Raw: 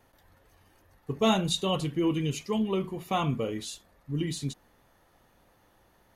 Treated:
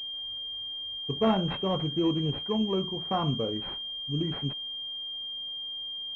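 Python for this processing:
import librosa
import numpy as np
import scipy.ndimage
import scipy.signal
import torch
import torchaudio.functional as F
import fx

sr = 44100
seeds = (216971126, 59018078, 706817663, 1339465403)

y = fx.pwm(x, sr, carrier_hz=3200.0)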